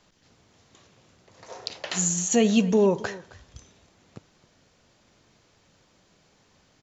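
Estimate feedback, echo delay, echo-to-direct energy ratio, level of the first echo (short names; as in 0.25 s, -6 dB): no steady repeat, 0.266 s, -19.5 dB, -19.5 dB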